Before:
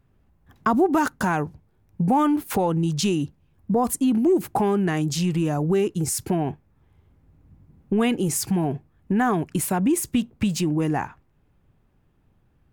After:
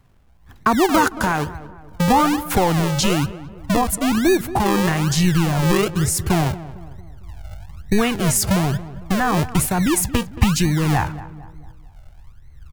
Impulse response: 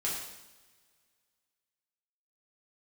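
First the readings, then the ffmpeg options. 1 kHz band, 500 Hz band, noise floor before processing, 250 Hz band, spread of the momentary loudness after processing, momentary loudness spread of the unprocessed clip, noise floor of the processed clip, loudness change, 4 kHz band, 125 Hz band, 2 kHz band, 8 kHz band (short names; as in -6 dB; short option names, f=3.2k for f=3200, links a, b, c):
+5.0 dB, +2.5 dB, -63 dBFS, +2.5 dB, 12 LU, 7 LU, -46 dBFS, +4.0 dB, +8.5 dB, +6.5 dB, +8.0 dB, +6.5 dB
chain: -filter_complex "[0:a]asubboost=boost=10.5:cutoff=75,tremolo=f=1.9:d=0.31,acrossover=split=500[a][b];[a]acrusher=samples=42:mix=1:aa=0.000001:lfo=1:lforange=42:lforate=1.1[c];[c][b]amix=inputs=2:normalize=0,asplit=2[d][e];[e]adelay=226,lowpass=f=1.5k:p=1,volume=-15dB,asplit=2[f][g];[g]adelay=226,lowpass=f=1.5k:p=1,volume=0.48,asplit=2[h][i];[i]adelay=226,lowpass=f=1.5k:p=1,volume=0.48,asplit=2[j][k];[k]adelay=226,lowpass=f=1.5k:p=1,volume=0.48[l];[d][f][h][j][l]amix=inputs=5:normalize=0,volume=7dB"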